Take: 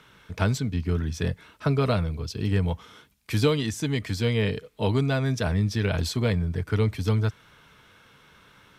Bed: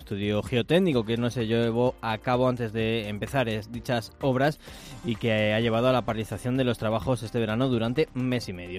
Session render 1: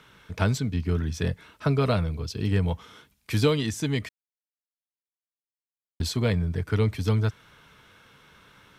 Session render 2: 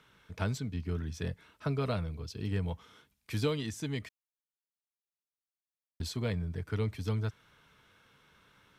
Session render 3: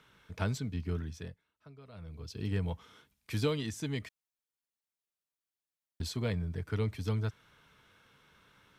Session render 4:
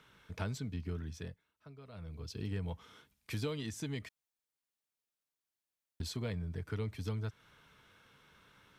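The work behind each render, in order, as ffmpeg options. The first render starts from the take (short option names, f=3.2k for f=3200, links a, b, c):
-filter_complex "[0:a]asplit=3[a][b][c];[a]atrim=end=4.09,asetpts=PTS-STARTPTS,afade=t=out:st=4.086:d=0.004:c=hsin[d];[b]atrim=start=4.09:end=6,asetpts=PTS-STARTPTS,volume=0[e];[c]atrim=start=6,asetpts=PTS-STARTPTS,afade=t=in:d=0.004:c=hsin[f];[d][e][f]concat=n=3:v=0:a=1"
-af "volume=-9dB"
-filter_complex "[0:a]asplit=3[a][b][c];[a]atrim=end=1.42,asetpts=PTS-STARTPTS,afade=t=out:st=0.94:d=0.48:silence=0.0841395[d];[b]atrim=start=1.42:end=1.92,asetpts=PTS-STARTPTS,volume=-21.5dB[e];[c]atrim=start=1.92,asetpts=PTS-STARTPTS,afade=t=in:d=0.48:silence=0.0841395[f];[d][e][f]concat=n=3:v=0:a=1"
-af "acompressor=threshold=-38dB:ratio=2"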